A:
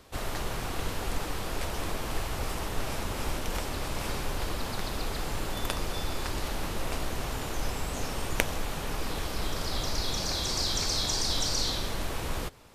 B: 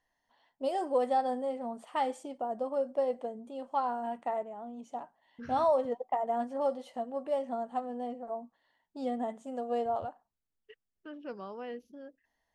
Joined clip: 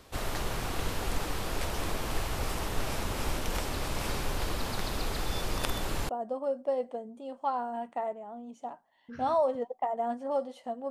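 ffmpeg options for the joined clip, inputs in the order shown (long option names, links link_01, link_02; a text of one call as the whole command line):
ffmpeg -i cue0.wav -i cue1.wav -filter_complex "[0:a]apad=whole_dur=10.9,atrim=end=10.9,asplit=2[link_01][link_02];[link_01]atrim=end=5.262[link_03];[link_02]atrim=start=5.258:end=6.092,asetpts=PTS-STARTPTS,areverse[link_04];[1:a]atrim=start=2.388:end=7.2[link_05];[link_03][link_04]acrossfade=duration=0.004:curve1=hsin:curve2=hsin[link_06];[link_06][link_05]acrossfade=duration=0.004:curve1=hsin:curve2=hsin" out.wav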